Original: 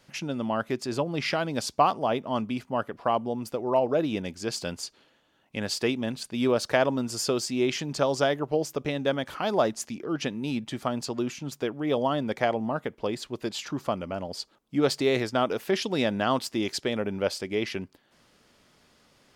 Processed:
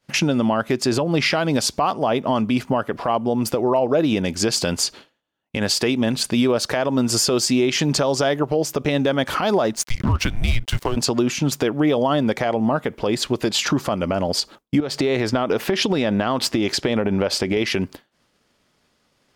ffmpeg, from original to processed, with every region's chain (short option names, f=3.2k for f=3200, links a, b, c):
-filter_complex "[0:a]asettb=1/sr,asplit=3[a][b][c];[a]atrim=end=9.764[d];[b]atrim=start=9.76:end=10.97,asetpts=PTS-STARTPTS,afade=t=in:d=0.004:c=qsin,afade=t=out:st=1.206:d=0.004:c=qsin,highpass=f=66:w=0.5412,highpass=f=66:w=1.3066,afreqshift=-230,aeval=exprs='sgn(val(0))*max(abs(val(0))-0.00562,0)':c=same[e];[c]atrim=start=10.966[f];[d][e]acrossfade=d=0.004:c1=hsin:c2=qsin[g];[g][f]acrossfade=d=0.004:c1=qsin:c2=hsin,asettb=1/sr,asplit=3[h][i][j];[h]atrim=end=14.804[k];[i]atrim=start=14.8:end=17.57,asetpts=PTS-STARTPTS,afade=t=in:d=0.004:c=qsin,afade=t=out:st=2.766:d=0.004:c=qsin,equalizer=f=12k:t=o:w=2.1:g=-8,acompressor=threshold=-31dB:ratio=16:attack=3.2:release=140:knee=1:detection=peak[l];[j]atrim=start=17.566[m];[k][l]acrossfade=d=0.004:c1=hsin:c2=qsin[n];[n][m]acrossfade=d=0.004:c1=qsin:c2=hsin,agate=range=-33dB:threshold=-47dB:ratio=3:detection=peak,acompressor=threshold=-35dB:ratio=4,alimiter=level_in=27.5dB:limit=-1dB:release=50:level=0:latency=1,volume=-8.5dB"